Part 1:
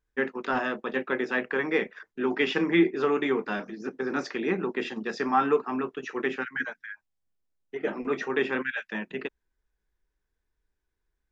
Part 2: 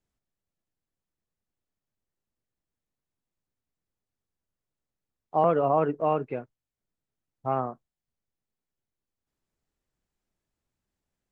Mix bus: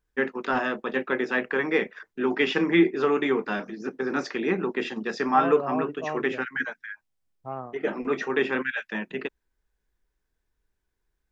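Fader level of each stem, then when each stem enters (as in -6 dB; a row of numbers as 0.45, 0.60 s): +2.0, -7.5 dB; 0.00, 0.00 s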